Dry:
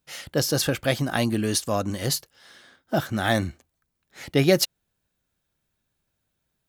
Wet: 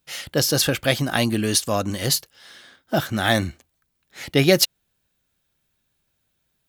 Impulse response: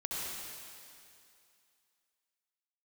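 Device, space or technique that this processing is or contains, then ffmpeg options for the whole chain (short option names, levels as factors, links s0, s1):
presence and air boost: -af "equalizer=f=3100:t=o:w=1.6:g=4,highshelf=f=9300:g=5,volume=1.26"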